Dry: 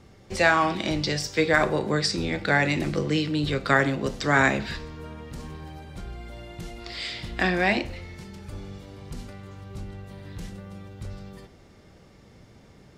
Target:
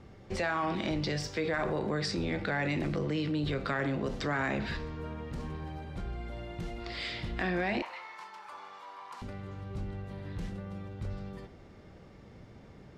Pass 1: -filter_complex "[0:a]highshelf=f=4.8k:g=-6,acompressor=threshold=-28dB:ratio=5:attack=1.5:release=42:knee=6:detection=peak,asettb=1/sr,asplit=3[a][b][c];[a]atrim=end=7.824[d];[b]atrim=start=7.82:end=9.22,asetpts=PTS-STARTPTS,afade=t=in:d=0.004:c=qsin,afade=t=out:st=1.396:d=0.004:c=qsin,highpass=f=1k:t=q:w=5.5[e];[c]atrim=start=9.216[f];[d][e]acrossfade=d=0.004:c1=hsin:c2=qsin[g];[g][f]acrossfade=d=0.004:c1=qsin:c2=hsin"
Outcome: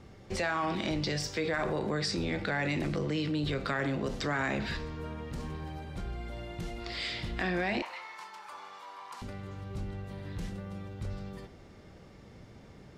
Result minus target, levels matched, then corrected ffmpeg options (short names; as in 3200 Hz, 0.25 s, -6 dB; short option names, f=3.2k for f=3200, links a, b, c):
8000 Hz band +4.0 dB
-filter_complex "[0:a]highshelf=f=4.8k:g=-14,acompressor=threshold=-28dB:ratio=5:attack=1.5:release=42:knee=6:detection=peak,asettb=1/sr,asplit=3[a][b][c];[a]atrim=end=7.824[d];[b]atrim=start=7.82:end=9.22,asetpts=PTS-STARTPTS,afade=t=in:d=0.004:c=qsin,afade=t=out:st=1.396:d=0.004:c=qsin,highpass=f=1k:t=q:w=5.5[e];[c]atrim=start=9.216[f];[d][e]acrossfade=d=0.004:c1=hsin:c2=qsin[g];[g][f]acrossfade=d=0.004:c1=qsin:c2=hsin"